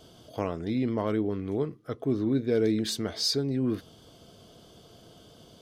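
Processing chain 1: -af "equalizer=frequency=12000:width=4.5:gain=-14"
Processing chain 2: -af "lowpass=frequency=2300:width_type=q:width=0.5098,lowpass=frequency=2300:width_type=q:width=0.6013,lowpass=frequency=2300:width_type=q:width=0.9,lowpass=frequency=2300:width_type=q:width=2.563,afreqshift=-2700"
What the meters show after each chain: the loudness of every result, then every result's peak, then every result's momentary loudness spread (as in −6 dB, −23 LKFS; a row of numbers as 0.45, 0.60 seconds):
−29.0, −26.0 LKFS; −14.5, −14.0 dBFS; 8, 9 LU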